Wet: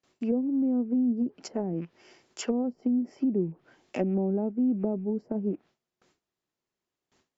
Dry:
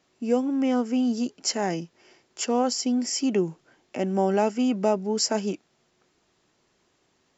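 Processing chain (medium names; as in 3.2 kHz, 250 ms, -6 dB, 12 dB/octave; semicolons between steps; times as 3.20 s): rattle on loud lows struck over -40 dBFS, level -33 dBFS; gate with hold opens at -56 dBFS; low-pass that closes with the level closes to 310 Hz, closed at -21.5 dBFS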